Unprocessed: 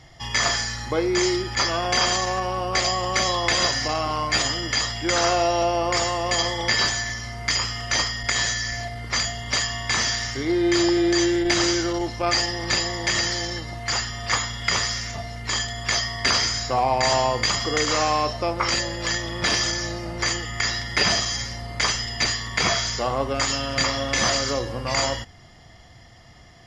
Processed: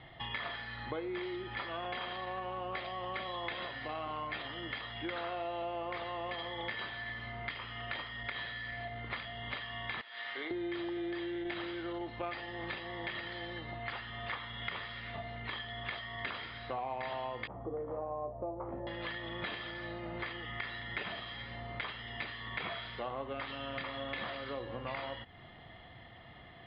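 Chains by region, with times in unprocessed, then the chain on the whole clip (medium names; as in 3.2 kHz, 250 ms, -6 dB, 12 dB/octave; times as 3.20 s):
10.01–10.51 s: high-pass 560 Hz + compressor with a negative ratio -32 dBFS
17.47–18.87 s: Chebyshev low-pass 770 Hz, order 3 + doubling 15 ms -5.5 dB
whole clip: compression, threshold -34 dBFS; steep low-pass 3.9 kHz 72 dB/octave; bass shelf 100 Hz -10.5 dB; trim -2 dB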